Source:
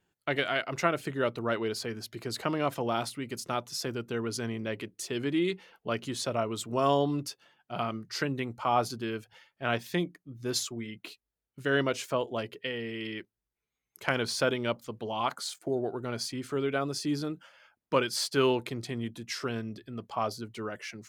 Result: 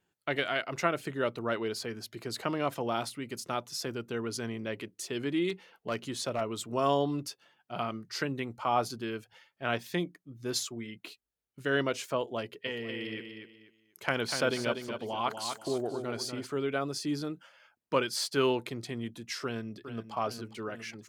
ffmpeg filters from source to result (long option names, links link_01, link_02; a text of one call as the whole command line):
ffmpeg -i in.wav -filter_complex "[0:a]asettb=1/sr,asplit=3[link_01][link_02][link_03];[link_01]atrim=end=5.494[link_04];[link_02]atrim=start=5.49:end=6.41,asetpts=PTS-STARTPTS,afade=type=in:duration=0.004:curve=qsin,afade=type=out:start_time=0.916:duration=0.004:curve=qsin,volume=23dB,asoftclip=hard,volume=-23dB[link_05];[link_03]atrim=start=6.406[link_06];[link_04][link_05]acrossfade=duration=0.004:curve1=hsin:curve2=qsin[link_07];[link_07][link_06]acrossfade=duration=0.004:curve1=qsin:curve2=hsin,asplit=3[link_08][link_09][link_10];[link_08]afade=type=out:start_time=12.65:duration=0.02[link_11];[link_09]aecho=1:1:243|486|729:0.447|0.121|0.0326,afade=type=in:start_time=12.65:duration=0.02,afade=type=out:start_time=16.45:duration=0.02[link_12];[link_10]afade=type=in:start_time=16.45:duration=0.02[link_13];[link_11][link_12][link_13]amix=inputs=3:normalize=0,asplit=2[link_14][link_15];[link_15]afade=type=in:start_time=19.43:duration=0.01,afade=type=out:start_time=20.12:duration=0.01,aecho=0:1:410|820|1230|1640|2050|2460|2870|3280|3690|4100:0.316228|0.221359|0.154952|0.108466|0.0759263|0.0531484|0.0372039|0.0260427|0.0182299|0.0127609[link_16];[link_14][link_16]amix=inputs=2:normalize=0,lowshelf=frequency=75:gain=-7,volume=-1.5dB" out.wav